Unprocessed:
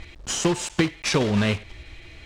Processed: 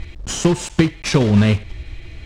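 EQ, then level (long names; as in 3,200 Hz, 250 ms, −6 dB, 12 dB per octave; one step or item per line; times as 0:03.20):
low-shelf EQ 270 Hz +10.5 dB
+1.5 dB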